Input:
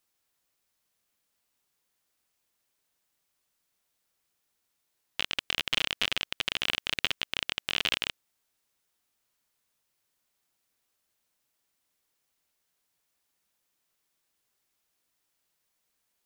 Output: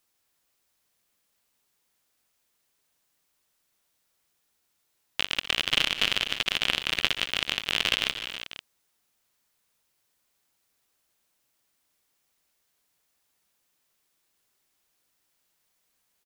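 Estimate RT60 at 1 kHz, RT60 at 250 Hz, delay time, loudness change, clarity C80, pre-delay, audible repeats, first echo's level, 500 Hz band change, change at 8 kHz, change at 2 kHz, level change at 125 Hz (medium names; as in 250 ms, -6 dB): no reverb, no reverb, 61 ms, +4.0 dB, no reverb, no reverb, 6, -19.0 dB, +4.0 dB, +4.0 dB, +4.0 dB, +4.5 dB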